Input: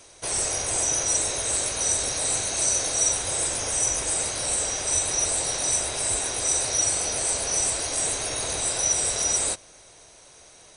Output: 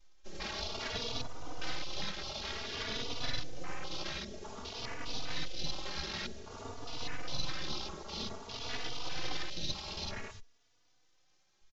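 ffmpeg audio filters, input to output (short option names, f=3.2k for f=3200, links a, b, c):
-filter_complex "[0:a]alimiter=limit=-15dB:level=0:latency=1:release=371,equalizer=f=240:w=7.2:g=-7,aecho=1:1:2.3:0.66,aresample=16000,aeval=exprs='abs(val(0))':c=same,aresample=44100,afwtdn=0.0178,asetrate=40517,aresample=44100,asplit=2[a][b];[b]adelay=3.4,afreqshift=0.53[c];[a][c]amix=inputs=2:normalize=1,volume=-1.5dB"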